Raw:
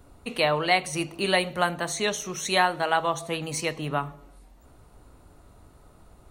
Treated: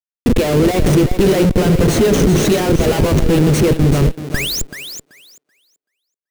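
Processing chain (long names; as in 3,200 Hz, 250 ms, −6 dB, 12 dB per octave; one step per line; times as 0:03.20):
sound drawn into the spectrogram rise, 0:04.34–0:04.62, 1,500–7,700 Hz −32 dBFS
in parallel at +0.5 dB: downward compressor 10 to 1, threshold −34 dBFS, peak gain reduction 18 dB
on the sum: leveller curve on the samples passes 2
comparator with hysteresis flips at −21 dBFS
low shelf with overshoot 580 Hz +9.5 dB, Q 1.5
on a send: feedback echo with a high-pass in the loop 382 ms, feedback 18%, high-pass 290 Hz, level −9 dB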